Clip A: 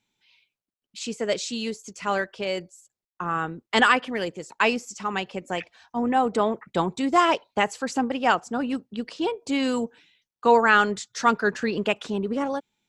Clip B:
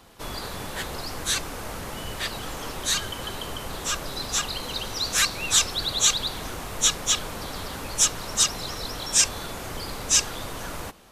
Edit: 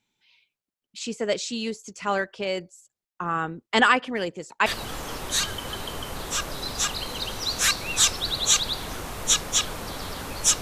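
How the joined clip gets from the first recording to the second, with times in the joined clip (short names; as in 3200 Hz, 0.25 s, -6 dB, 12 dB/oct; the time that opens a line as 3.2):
clip A
4.66 switch to clip B from 2.2 s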